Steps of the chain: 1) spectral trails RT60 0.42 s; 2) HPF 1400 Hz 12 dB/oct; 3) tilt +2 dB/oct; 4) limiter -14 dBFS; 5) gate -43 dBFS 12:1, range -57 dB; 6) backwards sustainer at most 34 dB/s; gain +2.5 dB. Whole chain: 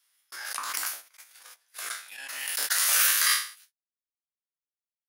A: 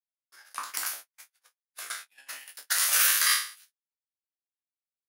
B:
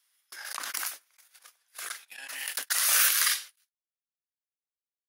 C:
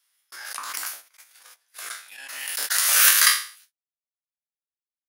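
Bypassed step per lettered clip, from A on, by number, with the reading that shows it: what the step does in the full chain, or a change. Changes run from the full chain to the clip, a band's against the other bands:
6, momentary loudness spread change +3 LU; 1, crest factor change +2.0 dB; 4, crest factor change +3.0 dB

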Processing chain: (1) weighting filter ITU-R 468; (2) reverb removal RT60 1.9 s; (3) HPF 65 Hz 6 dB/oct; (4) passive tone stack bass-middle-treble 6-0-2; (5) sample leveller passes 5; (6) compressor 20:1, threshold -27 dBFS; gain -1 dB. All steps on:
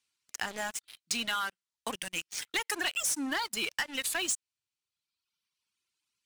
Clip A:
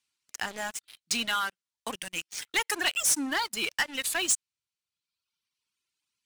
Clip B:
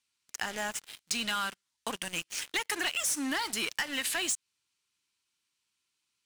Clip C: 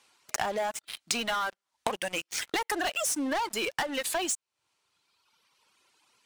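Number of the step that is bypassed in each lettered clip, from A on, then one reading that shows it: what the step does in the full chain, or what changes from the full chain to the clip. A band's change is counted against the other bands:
6, mean gain reduction 2.5 dB; 2, 125 Hz band +3.0 dB; 4, 500 Hz band +7.5 dB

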